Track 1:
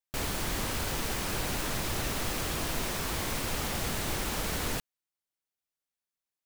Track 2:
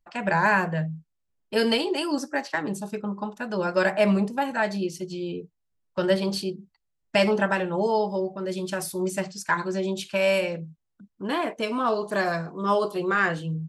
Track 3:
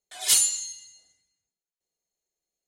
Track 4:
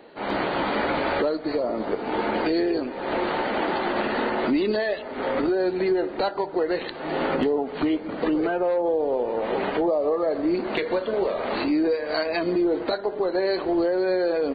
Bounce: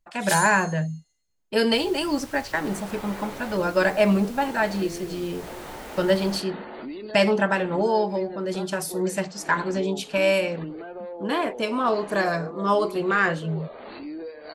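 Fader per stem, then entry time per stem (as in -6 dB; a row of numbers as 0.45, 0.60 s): -11.5, +1.5, -8.5, -13.5 dB; 1.60, 0.00, 0.00, 2.35 s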